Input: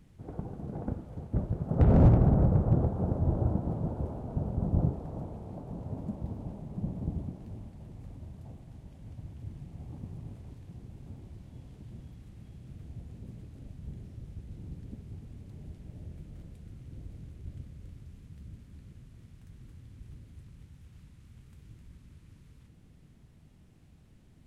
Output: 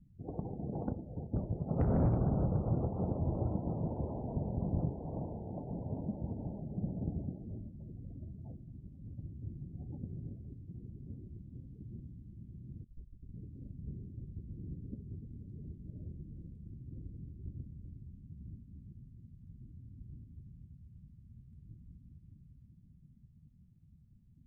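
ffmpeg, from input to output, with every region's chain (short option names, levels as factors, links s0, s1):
-filter_complex "[0:a]asettb=1/sr,asplit=3[s0][s1][s2];[s0]atrim=end=12.844[s3];[s1]atrim=start=12.84:end=13.34,asetpts=PTS-STARTPTS,afade=t=in:d=0.004:c=qsin,afade=t=out:st=0.496:d=0.004:c=qsin,afreqshift=-110,agate=range=0.0224:threshold=0.01:ratio=3:release=100:detection=peak[s4];[s2]atrim=start=13.336[s5];[s3][s4]acrossfade=d=0.004:c1=hsin:c2=qsin[s6];[s6][s5]acrossfade=d=0.004:c1=qsin:c2=hsin,afftdn=nr=29:nf=-48,lowshelf=f=80:g=-7,acompressor=threshold=0.0178:ratio=2,volume=1.19"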